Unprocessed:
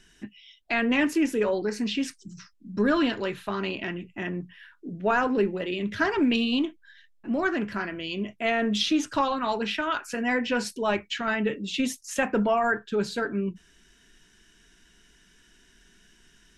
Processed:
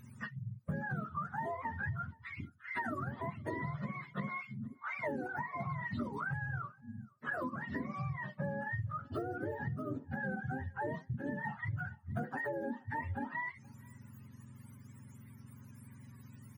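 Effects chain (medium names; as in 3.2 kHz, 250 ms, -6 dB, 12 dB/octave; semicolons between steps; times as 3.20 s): spectrum inverted on a logarithmic axis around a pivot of 620 Hz; compression 16:1, threshold -38 dBFS, peak gain reduction 23 dB; echo from a far wall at 81 m, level -25 dB; trim +3 dB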